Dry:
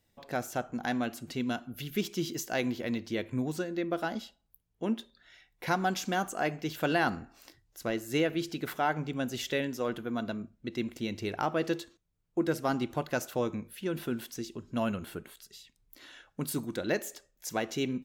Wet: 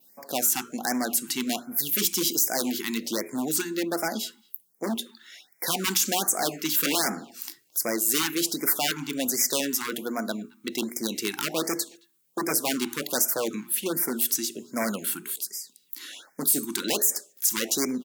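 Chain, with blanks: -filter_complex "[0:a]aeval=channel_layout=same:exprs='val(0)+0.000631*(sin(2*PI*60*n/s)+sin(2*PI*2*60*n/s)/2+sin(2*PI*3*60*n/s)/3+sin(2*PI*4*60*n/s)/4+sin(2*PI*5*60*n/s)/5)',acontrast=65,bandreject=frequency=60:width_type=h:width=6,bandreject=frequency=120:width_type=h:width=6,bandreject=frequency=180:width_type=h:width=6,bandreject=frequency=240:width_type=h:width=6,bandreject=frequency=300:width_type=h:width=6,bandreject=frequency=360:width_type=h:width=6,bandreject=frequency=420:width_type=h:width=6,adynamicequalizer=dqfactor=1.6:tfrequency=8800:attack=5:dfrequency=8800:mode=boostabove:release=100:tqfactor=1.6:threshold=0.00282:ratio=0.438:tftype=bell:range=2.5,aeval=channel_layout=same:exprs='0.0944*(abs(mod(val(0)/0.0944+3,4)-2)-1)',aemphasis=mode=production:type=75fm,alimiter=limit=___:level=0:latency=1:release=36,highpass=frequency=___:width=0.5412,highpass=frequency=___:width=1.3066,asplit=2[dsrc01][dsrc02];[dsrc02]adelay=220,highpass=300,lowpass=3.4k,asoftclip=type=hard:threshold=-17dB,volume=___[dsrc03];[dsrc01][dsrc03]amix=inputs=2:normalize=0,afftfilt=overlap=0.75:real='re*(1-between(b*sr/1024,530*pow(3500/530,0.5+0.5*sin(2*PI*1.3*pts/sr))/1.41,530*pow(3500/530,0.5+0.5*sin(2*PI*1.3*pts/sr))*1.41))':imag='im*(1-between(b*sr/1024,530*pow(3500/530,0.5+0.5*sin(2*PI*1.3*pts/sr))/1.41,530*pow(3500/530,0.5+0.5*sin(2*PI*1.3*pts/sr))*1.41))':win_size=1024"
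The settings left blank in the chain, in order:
-10.5dB, 200, 200, -24dB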